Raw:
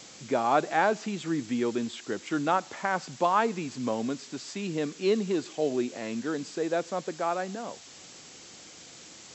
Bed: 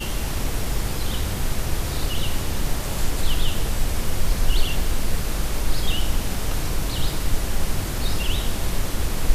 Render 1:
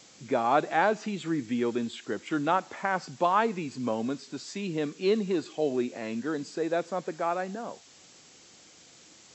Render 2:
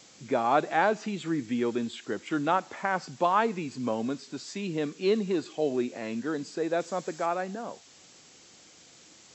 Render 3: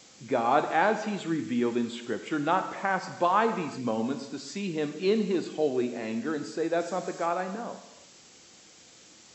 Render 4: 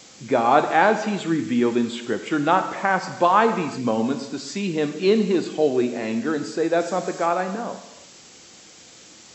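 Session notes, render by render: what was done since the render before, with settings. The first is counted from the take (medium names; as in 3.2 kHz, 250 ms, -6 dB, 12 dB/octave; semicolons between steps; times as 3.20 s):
noise print and reduce 6 dB
6.80–7.26 s: treble shelf 6 kHz +11.5 dB
gated-style reverb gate 400 ms falling, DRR 7.5 dB
trim +7 dB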